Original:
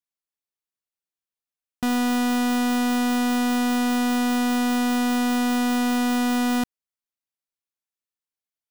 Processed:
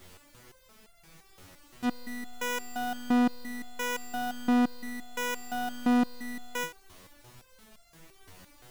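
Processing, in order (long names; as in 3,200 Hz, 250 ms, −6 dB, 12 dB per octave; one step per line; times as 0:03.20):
background noise pink −43 dBFS
step-sequenced resonator 5.8 Hz 92–690 Hz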